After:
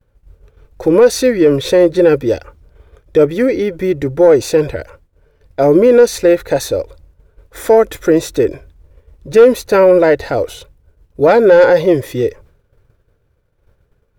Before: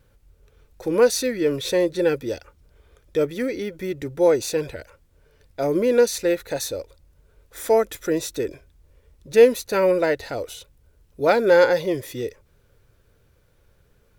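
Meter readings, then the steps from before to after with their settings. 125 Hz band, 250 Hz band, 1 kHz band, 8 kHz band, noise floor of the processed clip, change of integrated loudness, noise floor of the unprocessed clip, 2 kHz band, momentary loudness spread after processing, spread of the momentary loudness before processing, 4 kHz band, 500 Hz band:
+12.0 dB, +11.0 dB, +8.5 dB, +4.0 dB, -60 dBFS, +9.5 dB, -60 dBFS, +6.5 dB, 12 LU, 16 LU, +5.0 dB, +9.5 dB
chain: bell 210 Hz -3.5 dB 0.75 oct; in parallel at -5.5 dB: sine folder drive 6 dB, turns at -3.5 dBFS; on the sum: limiter -6.5 dBFS, peak gain reduction 4 dB; high shelf 2200 Hz -11 dB; expander -41 dBFS; gain +5.5 dB

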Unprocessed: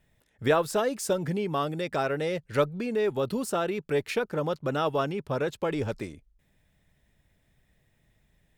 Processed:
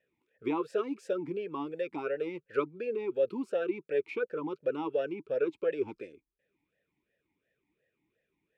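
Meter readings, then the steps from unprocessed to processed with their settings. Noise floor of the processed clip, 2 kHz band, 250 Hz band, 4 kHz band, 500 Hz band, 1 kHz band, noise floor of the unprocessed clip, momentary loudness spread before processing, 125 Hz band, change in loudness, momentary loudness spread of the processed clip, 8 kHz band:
-84 dBFS, -8.0 dB, -4.5 dB, under -10 dB, -4.0 dB, -9.5 dB, -70 dBFS, 5 LU, -17.5 dB, -5.0 dB, 5 LU, under -20 dB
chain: vowel sweep e-u 2.8 Hz; gain +5 dB

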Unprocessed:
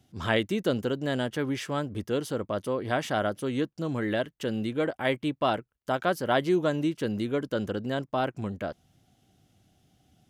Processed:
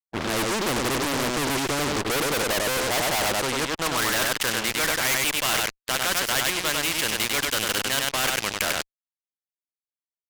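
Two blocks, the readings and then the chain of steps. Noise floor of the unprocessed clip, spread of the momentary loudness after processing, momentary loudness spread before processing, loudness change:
-69 dBFS, 4 LU, 6 LU, +6.0 dB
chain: reverse; compressor 10:1, threshold -33 dBFS, peak gain reduction 14 dB; reverse; high shelf 6900 Hz +11.5 dB; band-pass sweep 340 Hz -> 2400 Hz, 1.52–5.28; LPF 9300 Hz; on a send: echo 97 ms -5.5 dB; on the sum: fuzz box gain 51 dB, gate -60 dBFS; spectral compressor 2:1; gain +2 dB

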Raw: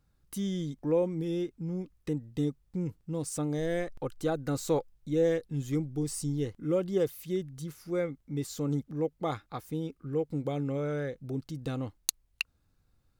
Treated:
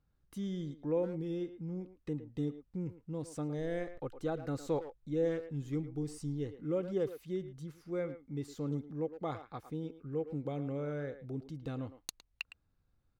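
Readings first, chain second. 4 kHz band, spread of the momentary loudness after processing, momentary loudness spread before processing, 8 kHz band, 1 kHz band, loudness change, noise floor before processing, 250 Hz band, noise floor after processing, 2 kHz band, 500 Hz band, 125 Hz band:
-9.5 dB, 9 LU, 9 LU, -14.0 dB, -5.5 dB, -5.5 dB, -71 dBFS, -5.5 dB, -76 dBFS, -7.0 dB, -5.5 dB, -5.5 dB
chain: LPF 2800 Hz 6 dB/oct; speakerphone echo 0.11 s, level -11 dB; gain -5.5 dB

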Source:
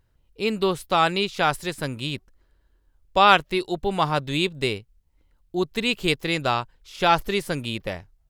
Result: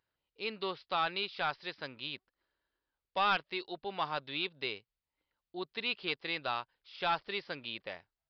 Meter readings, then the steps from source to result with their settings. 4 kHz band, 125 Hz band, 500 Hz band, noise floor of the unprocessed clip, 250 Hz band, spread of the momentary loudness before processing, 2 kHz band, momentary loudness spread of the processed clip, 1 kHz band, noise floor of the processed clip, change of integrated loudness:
-10.5 dB, -22.0 dB, -15.5 dB, -65 dBFS, -18.5 dB, 12 LU, -11.0 dB, 10 LU, -13.0 dB, under -85 dBFS, -12.5 dB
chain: HPF 840 Hz 6 dB/oct; soft clip -14 dBFS, distortion -11 dB; downsampling 11025 Hz; gain -8 dB

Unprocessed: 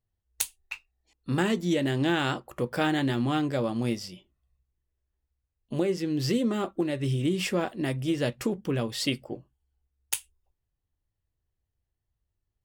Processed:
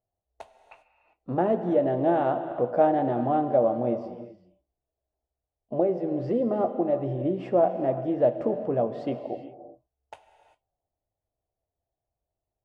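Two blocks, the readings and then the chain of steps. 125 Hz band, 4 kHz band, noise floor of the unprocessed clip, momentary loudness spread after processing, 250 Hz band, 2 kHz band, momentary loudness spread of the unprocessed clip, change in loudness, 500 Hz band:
-4.5 dB, under -20 dB, -83 dBFS, 10 LU, -1.0 dB, -11.0 dB, 10 LU, +3.0 dB, +7.0 dB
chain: synth low-pass 670 Hz, resonance Q 4.9; tilt +2.5 dB/oct; non-linear reverb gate 0.42 s flat, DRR 8.5 dB; gain +1.5 dB

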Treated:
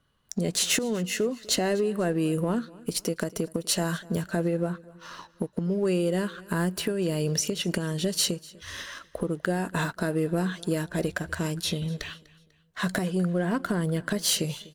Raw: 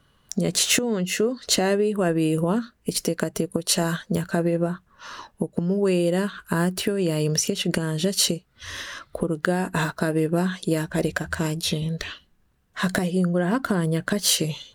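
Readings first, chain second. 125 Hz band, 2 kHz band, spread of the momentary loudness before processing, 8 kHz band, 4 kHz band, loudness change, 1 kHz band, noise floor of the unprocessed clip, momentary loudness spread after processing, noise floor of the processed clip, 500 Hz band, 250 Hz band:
-4.0 dB, -4.5 dB, 11 LU, -4.5 dB, -4.0 dB, -4.0 dB, -4.5 dB, -63 dBFS, 11 LU, -61 dBFS, -4.0 dB, -4.0 dB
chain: sample leveller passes 1; on a send: feedback echo 0.247 s, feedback 42%, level -22 dB; on the sum: gain -7.5 dB

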